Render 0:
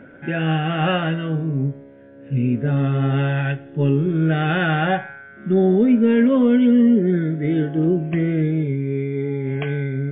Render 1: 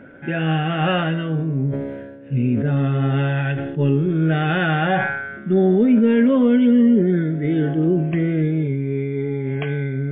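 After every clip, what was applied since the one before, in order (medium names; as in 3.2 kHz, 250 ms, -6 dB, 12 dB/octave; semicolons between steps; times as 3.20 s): decay stretcher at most 42 dB/s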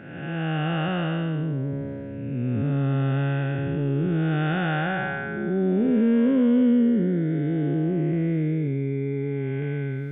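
spectral blur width 443 ms; trim -3.5 dB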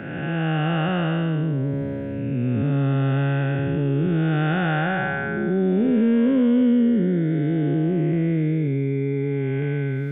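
three bands compressed up and down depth 40%; trim +2.5 dB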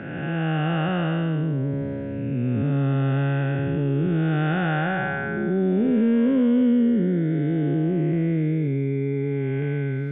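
distance through air 83 m; trim -1 dB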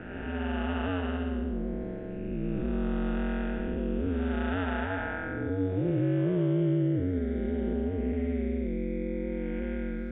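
ring modulator 91 Hz; trim -4.5 dB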